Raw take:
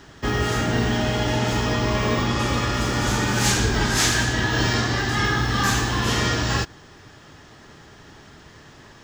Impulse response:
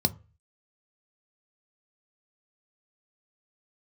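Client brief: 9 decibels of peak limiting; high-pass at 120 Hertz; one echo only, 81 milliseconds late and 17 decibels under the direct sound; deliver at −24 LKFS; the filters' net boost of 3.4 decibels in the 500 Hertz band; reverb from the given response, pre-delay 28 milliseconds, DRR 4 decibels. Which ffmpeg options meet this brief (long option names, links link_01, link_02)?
-filter_complex "[0:a]highpass=120,equalizer=frequency=500:width_type=o:gain=4.5,alimiter=limit=-16dB:level=0:latency=1,aecho=1:1:81:0.141,asplit=2[link_01][link_02];[1:a]atrim=start_sample=2205,adelay=28[link_03];[link_02][link_03]afir=irnorm=-1:irlink=0,volume=-12.5dB[link_04];[link_01][link_04]amix=inputs=2:normalize=0,volume=-2.5dB"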